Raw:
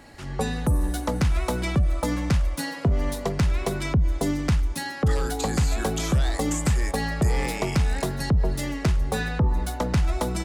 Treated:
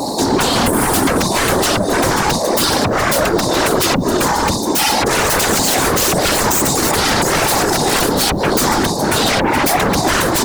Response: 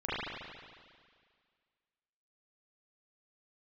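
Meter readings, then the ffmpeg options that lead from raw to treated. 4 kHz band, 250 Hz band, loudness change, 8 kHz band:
+18.5 dB, +10.5 dB, +11.5 dB, +18.5 dB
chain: -filter_complex "[0:a]highpass=f=230:w=0.5412,highpass=f=230:w=1.3066,afftfilt=real='re*(1-between(b*sr/4096,1100,3600))':imag='im*(1-between(b*sr/4096,1100,3600))':win_size=4096:overlap=0.75,asplit=2[a][b];[b]acompressor=threshold=-30dB:ratio=10,volume=1.5dB[c];[a][c]amix=inputs=2:normalize=0,alimiter=limit=-20dB:level=0:latency=1:release=192,acontrast=53,aeval=exprs='0.2*sin(PI/2*3.98*val(0)/0.2)':c=same,acrusher=bits=7:mix=0:aa=0.000001,afftfilt=real='hypot(re,im)*cos(2*PI*random(0))':imag='hypot(re,im)*sin(2*PI*random(1))':win_size=512:overlap=0.75,volume=8.5dB"

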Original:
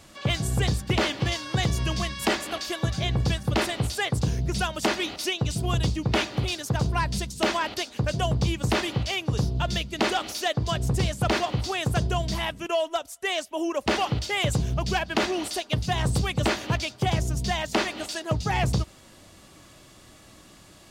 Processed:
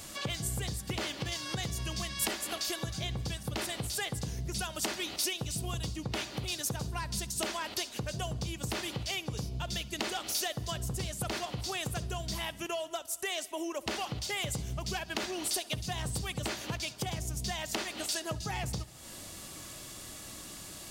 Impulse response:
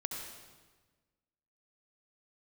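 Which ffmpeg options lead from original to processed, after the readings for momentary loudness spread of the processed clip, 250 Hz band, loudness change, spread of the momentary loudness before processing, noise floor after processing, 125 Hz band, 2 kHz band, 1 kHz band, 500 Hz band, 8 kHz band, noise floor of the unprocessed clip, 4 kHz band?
6 LU, -11.0 dB, -9.0 dB, 4 LU, -47 dBFS, -11.5 dB, -9.0 dB, -11.0 dB, -11.0 dB, -0.5 dB, -52 dBFS, -6.0 dB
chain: -filter_complex "[0:a]acompressor=threshold=-38dB:ratio=4,crystalizer=i=2:c=0,asplit=2[a][b];[1:a]atrim=start_sample=2205,adelay=66[c];[b][c]afir=irnorm=-1:irlink=0,volume=-19dB[d];[a][d]amix=inputs=2:normalize=0,volume=1.5dB"

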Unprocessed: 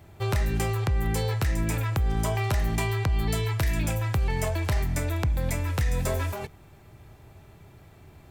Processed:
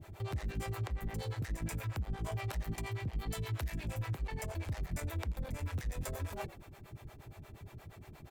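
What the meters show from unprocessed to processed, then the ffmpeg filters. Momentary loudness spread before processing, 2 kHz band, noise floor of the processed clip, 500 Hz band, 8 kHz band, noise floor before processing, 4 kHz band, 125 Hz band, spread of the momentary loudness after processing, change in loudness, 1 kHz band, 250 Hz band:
2 LU, -12.5 dB, -56 dBFS, -13.0 dB, -12.5 dB, -52 dBFS, -12.0 dB, -12.0 dB, 14 LU, -12.5 dB, -12.0 dB, -12.0 dB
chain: -filter_complex "[0:a]alimiter=level_in=5dB:limit=-24dB:level=0:latency=1:release=138,volume=-5dB,asplit=4[a][b][c][d];[b]adelay=84,afreqshift=-52,volume=-14dB[e];[c]adelay=168,afreqshift=-104,volume=-22.9dB[f];[d]adelay=252,afreqshift=-156,volume=-31.7dB[g];[a][e][f][g]amix=inputs=4:normalize=0,volume=33.5dB,asoftclip=hard,volume=-33.5dB,acrossover=split=400[h][i];[h]aeval=exprs='val(0)*(1-1/2+1/2*cos(2*PI*8.5*n/s))':c=same[j];[i]aeval=exprs='val(0)*(1-1/2-1/2*cos(2*PI*8.5*n/s))':c=same[k];[j][k]amix=inputs=2:normalize=0,volume=3.5dB"

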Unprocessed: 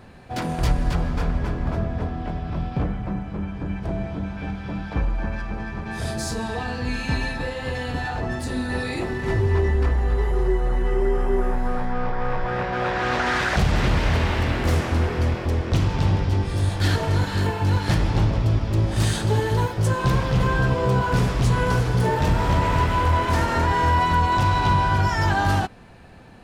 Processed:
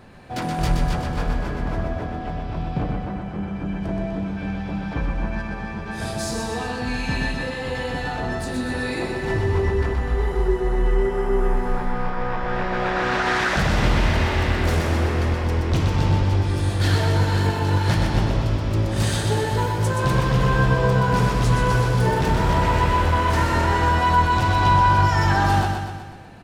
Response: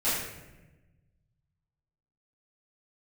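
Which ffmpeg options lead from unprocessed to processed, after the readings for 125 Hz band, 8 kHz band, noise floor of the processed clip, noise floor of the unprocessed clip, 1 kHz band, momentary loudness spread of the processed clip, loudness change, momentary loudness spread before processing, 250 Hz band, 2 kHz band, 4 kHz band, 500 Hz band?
+0.5 dB, +2.0 dB, -31 dBFS, -33 dBFS, +2.0 dB, 10 LU, +1.0 dB, 9 LU, +1.5 dB, +2.0 dB, +2.0 dB, +1.5 dB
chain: -filter_complex "[0:a]equalizer=f=68:w=1.4:g=-5,aecho=1:1:124|248|372|496|620|744|868:0.596|0.328|0.18|0.0991|0.0545|0.03|0.0165,asplit=2[a][b];[1:a]atrim=start_sample=2205,adelay=68[c];[b][c]afir=irnorm=-1:irlink=0,volume=-29dB[d];[a][d]amix=inputs=2:normalize=0"

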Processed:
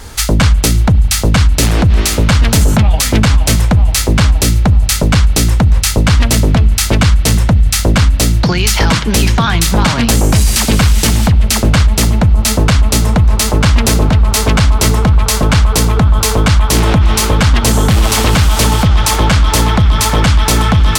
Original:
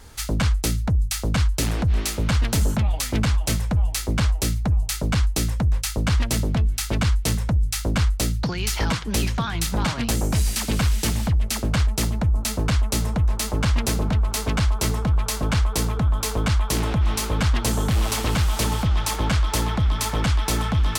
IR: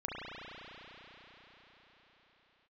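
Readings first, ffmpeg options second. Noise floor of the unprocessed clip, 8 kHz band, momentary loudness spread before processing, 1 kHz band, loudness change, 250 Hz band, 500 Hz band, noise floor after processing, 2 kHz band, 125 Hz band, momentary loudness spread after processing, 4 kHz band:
-30 dBFS, +12.5 dB, 2 LU, +12.5 dB, +12.0 dB, +12.0 dB, +12.5 dB, -15 dBFS, +12.5 dB, +12.0 dB, 1 LU, +12.5 dB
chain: -filter_complex "[0:a]bandreject=f=68.61:t=h:w=4,bandreject=f=137.22:t=h:w=4,bandreject=f=205.83:t=h:w=4,bandreject=f=274.44:t=h:w=4,bandreject=f=343.05:t=h:w=4,asplit=2[a][b];[1:a]atrim=start_sample=2205,lowpass=10k,highshelf=f=3.5k:g=11[c];[b][c]afir=irnorm=-1:irlink=0,volume=-23.5dB[d];[a][d]amix=inputs=2:normalize=0,alimiter=level_in=15.5dB:limit=-1dB:release=50:level=0:latency=1,volume=-1dB"

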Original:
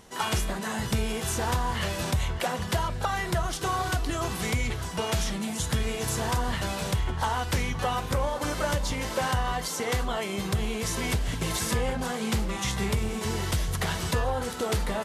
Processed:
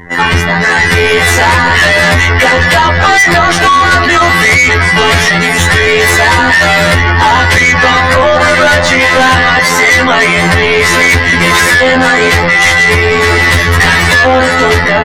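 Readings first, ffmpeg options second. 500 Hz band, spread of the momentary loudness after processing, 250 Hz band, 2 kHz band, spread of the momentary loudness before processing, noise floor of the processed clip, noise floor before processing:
+21.0 dB, 2 LU, +17.0 dB, +30.0 dB, 2 LU, -10 dBFS, -34 dBFS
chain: -filter_complex "[0:a]aecho=1:1:238:0.126,afftfilt=real='hypot(re,im)*cos(PI*b)':imag='0':win_size=2048:overlap=0.75,bass=f=250:g=1,treble=f=4k:g=-7,acrossover=split=390[a][b];[b]dynaudnorm=f=200:g=7:m=9dB[c];[a][c]amix=inputs=2:normalize=0,aeval=exprs='0.562*sin(PI/2*1.78*val(0)/0.562)':c=same,equalizer=f=1.9k:w=2.8:g=12.5,asoftclip=type=hard:threshold=-9dB,apsyclip=21.5dB,afftdn=nr=23:nf=-23,volume=-3.5dB"

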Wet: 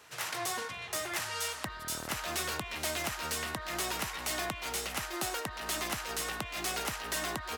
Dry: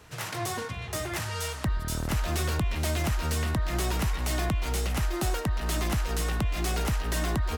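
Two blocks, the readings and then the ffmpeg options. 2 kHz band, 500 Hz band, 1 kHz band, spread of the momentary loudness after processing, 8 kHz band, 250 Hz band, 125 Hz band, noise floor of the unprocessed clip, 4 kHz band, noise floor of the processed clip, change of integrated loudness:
-0.5 dB, -5.5 dB, -2.5 dB, 3 LU, 0.0 dB, -10.5 dB, -18.5 dB, -37 dBFS, 0.0 dB, -44 dBFS, -5.0 dB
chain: -af "highpass=f=790:p=1"

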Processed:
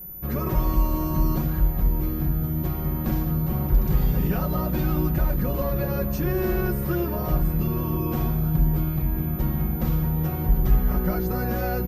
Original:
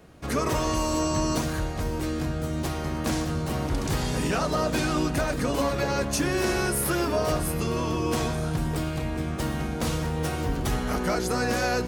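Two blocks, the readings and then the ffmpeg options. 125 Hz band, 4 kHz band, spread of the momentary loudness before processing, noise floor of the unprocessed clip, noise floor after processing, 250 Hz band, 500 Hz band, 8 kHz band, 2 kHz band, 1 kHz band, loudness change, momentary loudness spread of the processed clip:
+5.5 dB, -12.5 dB, 5 LU, -31 dBFS, -28 dBFS, +1.5 dB, -3.0 dB, under -15 dB, -7.0 dB, -4.0 dB, +2.0 dB, 3 LU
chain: -af "aemphasis=mode=reproduction:type=riaa,aeval=exprs='val(0)+0.0251*sin(2*PI*14000*n/s)':c=same,aecho=1:1:5.5:0.63,volume=-7dB"

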